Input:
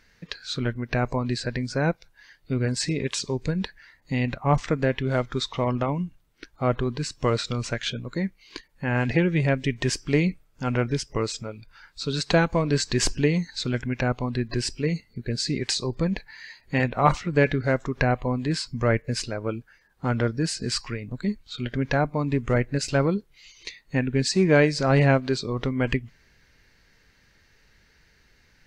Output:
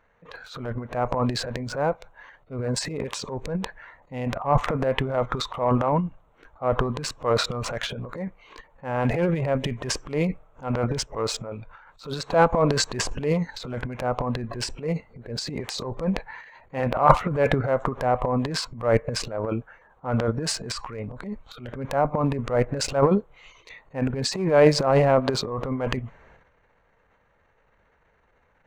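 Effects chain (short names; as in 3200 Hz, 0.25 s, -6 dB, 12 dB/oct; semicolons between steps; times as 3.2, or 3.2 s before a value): Wiener smoothing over 9 samples; band shelf 770 Hz +12 dB; transient shaper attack -8 dB, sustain +12 dB; gain -6 dB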